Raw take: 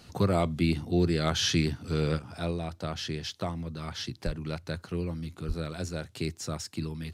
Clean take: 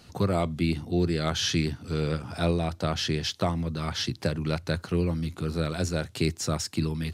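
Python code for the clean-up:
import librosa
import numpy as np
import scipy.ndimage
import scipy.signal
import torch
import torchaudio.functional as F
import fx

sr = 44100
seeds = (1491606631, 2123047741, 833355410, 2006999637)

y = fx.fix_deplosive(x, sr, at_s=(4.25, 5.47))
y = fx.fix_level(y, sr, at_s=2.19, step_db=6.5)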